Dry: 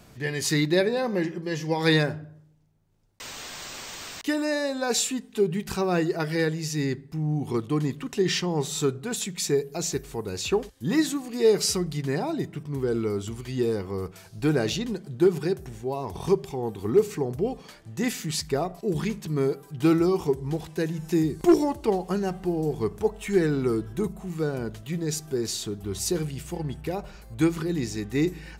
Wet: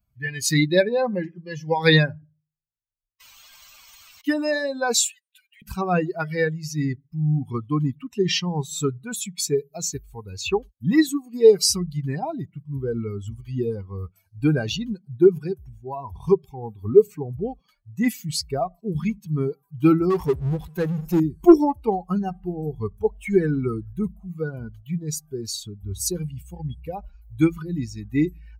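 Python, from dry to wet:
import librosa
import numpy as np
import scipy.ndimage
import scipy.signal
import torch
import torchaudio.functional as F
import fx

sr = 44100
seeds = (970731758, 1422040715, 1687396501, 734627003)

y = fx.bin_expand(x, sr, power=2.0)
y = fx.steep_highpass(y, sr, hz=1500.0, slope=96, at=(4.94, 5.62))
y = fx.power_curve(y, sr, exponent=0.7, at=(20.1, 21.2))
y = F.gain(torch.from_numpy(y), 8.5).numpy()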